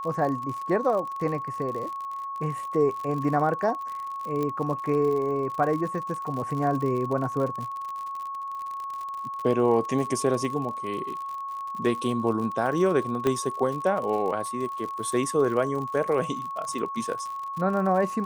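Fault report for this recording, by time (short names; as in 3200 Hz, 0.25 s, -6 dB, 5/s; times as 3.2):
crackle 62/s -32 dBFS
tone 1100 Hz -31 dBFS
4.43 pop -18 dBFS
13.27 pop -12 dBFS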